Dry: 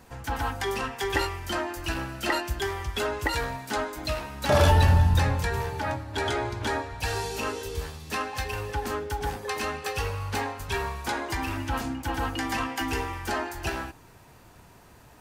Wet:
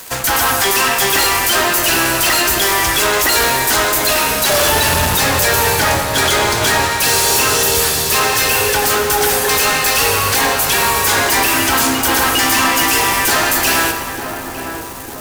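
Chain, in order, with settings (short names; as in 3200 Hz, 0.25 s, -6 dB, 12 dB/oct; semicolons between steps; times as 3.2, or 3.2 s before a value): RIAA curve recording; notch 860 Hz, Q 12; fuzz box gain 41 dB, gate -47 dBFS; on a send: darkening echo 0.901 s, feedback 65%, low-pass 890 Hz, level -6 dB; on the sum: plate-style reverb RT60 1.9 s, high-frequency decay 0.9×, DRR 6 dB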